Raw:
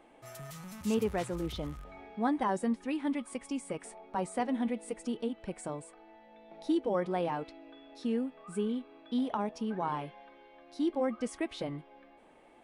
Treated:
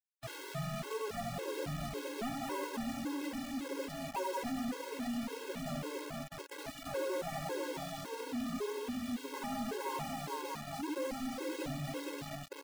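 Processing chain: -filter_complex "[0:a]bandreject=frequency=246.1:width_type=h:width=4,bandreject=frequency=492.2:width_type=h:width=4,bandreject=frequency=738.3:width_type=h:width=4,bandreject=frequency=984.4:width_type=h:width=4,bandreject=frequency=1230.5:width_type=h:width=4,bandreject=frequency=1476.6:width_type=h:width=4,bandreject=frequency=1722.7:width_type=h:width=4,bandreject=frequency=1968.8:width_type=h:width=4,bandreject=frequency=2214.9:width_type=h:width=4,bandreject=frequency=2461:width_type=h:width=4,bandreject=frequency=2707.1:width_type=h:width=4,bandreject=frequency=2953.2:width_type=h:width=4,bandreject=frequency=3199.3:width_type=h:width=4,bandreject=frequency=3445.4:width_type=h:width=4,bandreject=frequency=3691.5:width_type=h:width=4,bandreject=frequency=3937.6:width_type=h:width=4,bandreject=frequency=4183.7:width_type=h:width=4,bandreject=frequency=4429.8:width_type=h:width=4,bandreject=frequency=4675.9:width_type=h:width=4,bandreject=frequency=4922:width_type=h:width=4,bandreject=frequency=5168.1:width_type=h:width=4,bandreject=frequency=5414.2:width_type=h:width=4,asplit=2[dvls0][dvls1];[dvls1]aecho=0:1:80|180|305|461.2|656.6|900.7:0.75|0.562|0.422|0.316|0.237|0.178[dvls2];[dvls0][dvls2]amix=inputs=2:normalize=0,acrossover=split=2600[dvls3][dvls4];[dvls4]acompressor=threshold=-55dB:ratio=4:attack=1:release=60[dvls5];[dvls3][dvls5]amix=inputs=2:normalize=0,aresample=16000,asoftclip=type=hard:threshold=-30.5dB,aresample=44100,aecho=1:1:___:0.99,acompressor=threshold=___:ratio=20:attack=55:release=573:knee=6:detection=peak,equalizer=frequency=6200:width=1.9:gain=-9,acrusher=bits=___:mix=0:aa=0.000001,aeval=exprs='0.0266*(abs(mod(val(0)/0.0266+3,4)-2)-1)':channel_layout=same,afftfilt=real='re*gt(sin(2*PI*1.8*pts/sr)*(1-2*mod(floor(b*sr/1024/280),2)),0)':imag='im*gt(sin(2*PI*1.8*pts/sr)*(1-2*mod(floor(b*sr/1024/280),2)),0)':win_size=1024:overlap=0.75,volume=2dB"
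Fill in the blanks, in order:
7.4, -33dB, 6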